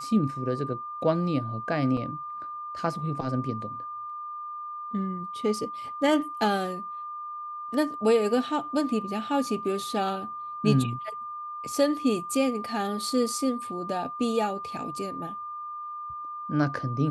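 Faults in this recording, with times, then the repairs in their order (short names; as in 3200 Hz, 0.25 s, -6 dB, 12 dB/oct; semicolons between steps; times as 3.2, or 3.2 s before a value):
tone 1200 Hz -34 dBFS
1.97 gap 2.7 ms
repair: notch 1200 Hz, Q 30; interpolate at 1.97, 2.7 ms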